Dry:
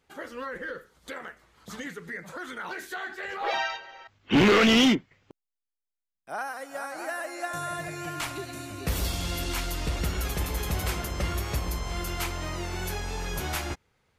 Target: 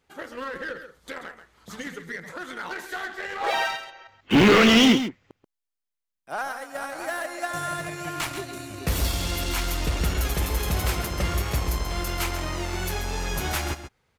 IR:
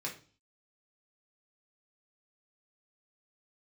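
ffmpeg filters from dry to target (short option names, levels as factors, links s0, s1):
-filter_complex "[0:a]asplit=2[s0][s1];[s1]acrusher=bits=4:mix=0:aa=0.5,volume=0.447[s2];[s0][s2]amix=inputs=2:normalize=0,aecho=1:1:134:0.316"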